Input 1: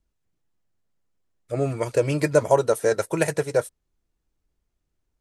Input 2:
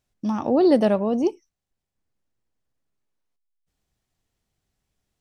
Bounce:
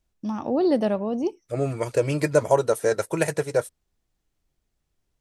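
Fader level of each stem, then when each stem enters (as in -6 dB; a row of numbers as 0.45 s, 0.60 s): -1.0 dB, -4.0 dB; 0.00 s, 0.00 s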